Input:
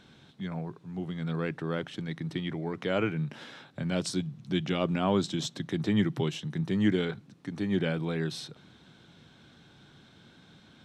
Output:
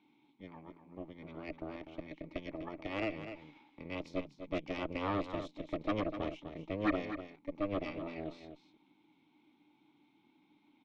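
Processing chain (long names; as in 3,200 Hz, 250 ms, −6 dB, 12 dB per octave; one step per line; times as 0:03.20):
formant filter u
downsampling to 16,000 Hz
harmonic generator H 8 −11 dB, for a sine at −21 dBFS
low-shelf EQ 330 Hz −7.5 dB
single-tap delay 249 ms −10 dB
level +2.5 dB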